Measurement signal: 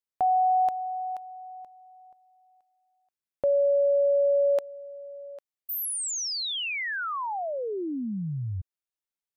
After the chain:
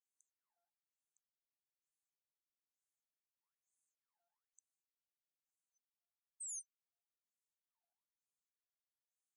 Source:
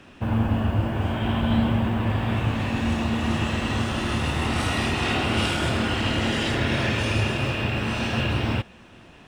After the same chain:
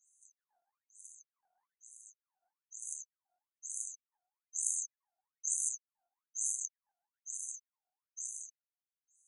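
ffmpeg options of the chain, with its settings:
-af "aeval=exprs='0.335*(cos(1*acos(clip(val(0)/0.335,-1,1)))-cos(1*PI/2))+0.0668*(cos(6*acos(clip(val(0)/0.335,-1,1)))-cos(6*PI/2))+0.075*(cos(7*acos(clip(val(0)/0.335,-1,1)))-cos(7*PI/2))+0.0237*(cos(8*acos(clip(val(0)/0.335,-1,1)))-cos(8*PI/2))':c=same,afftfilt=real='re*(1-between(b*sr/4096,490,6100))':imag='im*(1-between(b*sr/4096,490,6100))':win_size=4096:overlap=0.75,afftfilt=real='re*between(b*sr/1024,990*pow(7900/990,0.5+0.5*sin(2*PI*1.1*pts/sr))/1.41,990*pow(7900/990,0.5+0.5*sin(2*PI*1.1*pts/sr))*1.41)':imag='im*between(b*sr/1024,990*pow(7900/990,0.5+0.5*sin(2*PI*1.1*pts/sr))/1.41,990*pow(7900/990,0.5+0.5*sin(2*PI*1.1*pts/sr))*1.41)':win_size=1024:overlap=0.75,volume=2.24"

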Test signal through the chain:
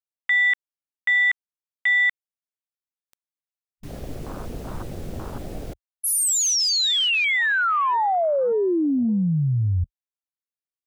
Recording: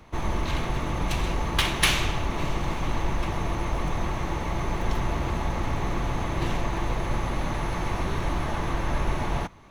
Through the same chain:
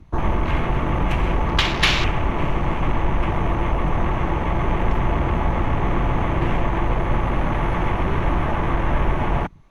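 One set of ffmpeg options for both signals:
-filter_complex "[0:a]asplit=2[s0][s1];[s1]alimiter=limit=0.112:level=0:latency=1:release=438,volume=0.891[s2];[s0][s2]amix=inputs=2:normalize=0,afwtdn=0.0251,volume=1.33"

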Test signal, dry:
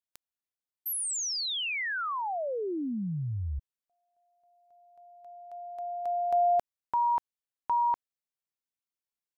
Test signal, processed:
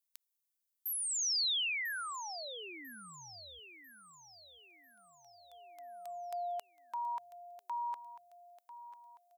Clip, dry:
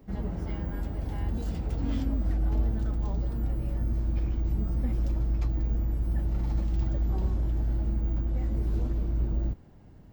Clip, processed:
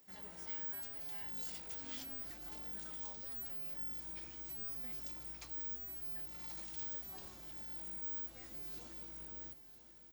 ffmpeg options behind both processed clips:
-filter_complex "[0:a]acrossover=split=5300[s0][s1];[s1]acompressor=threshold=0.00355:ratio=4:attack=1:release=60[s2];[s0][s2]amix=inputs=2:normalize=0,aderivative,asplit=2[s3][s4];[s4]aecho=0:1:995|1990|2985|3980|4975:0.211|0.0993|0.0467|0.0219|0.0103[s5];[s3][s5]amix=inputs=2:normalize=0,volume=2"

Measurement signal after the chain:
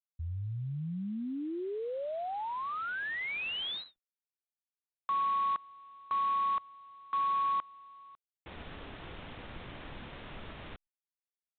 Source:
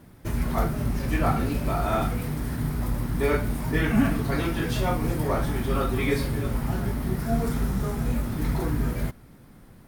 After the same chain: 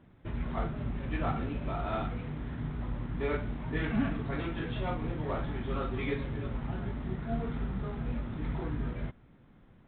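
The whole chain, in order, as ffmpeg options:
-af "volume=0.376" -ar 8000 -c:a adpcm_ima_wav

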